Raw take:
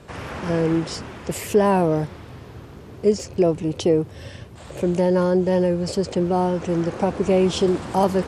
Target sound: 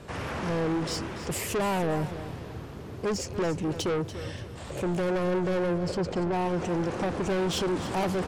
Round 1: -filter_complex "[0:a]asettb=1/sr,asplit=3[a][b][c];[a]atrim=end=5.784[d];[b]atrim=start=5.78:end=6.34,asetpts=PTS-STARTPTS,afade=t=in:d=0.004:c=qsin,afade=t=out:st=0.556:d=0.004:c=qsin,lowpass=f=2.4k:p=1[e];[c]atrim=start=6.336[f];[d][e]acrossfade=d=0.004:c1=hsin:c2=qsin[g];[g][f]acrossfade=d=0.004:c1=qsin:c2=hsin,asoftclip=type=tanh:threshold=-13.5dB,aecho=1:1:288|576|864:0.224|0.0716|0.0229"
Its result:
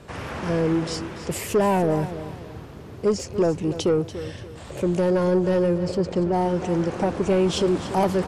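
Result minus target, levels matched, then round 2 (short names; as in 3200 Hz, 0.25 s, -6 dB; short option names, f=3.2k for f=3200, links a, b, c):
soft clip: distortion -10 dB
-filter_complex "[0:a]asettb=1/sr,asplit=3[a][b][c];[a]atrim=end=5.784[d];[b]atrim=start=5.78:end=6.34,asetpts=PTS-STARTPTS,afade=t=in:d=0.004:c=qsin,afade=t=out:st=0.556:d=0.004:c=qsin,lowpass=f=2.4k:p=1[e];[c]atrim=start=6.336[f];[d][e]acrossfade=d=0.004:c1=hsin:c2=qsin[g];[g][f]acrossfade=d=0.004:c1=qsin:c2=hsin,asoftclip=type=tanh:threshold=-25dB,aecho=1:1:288|576|864:0.224|0.0716|0.0229"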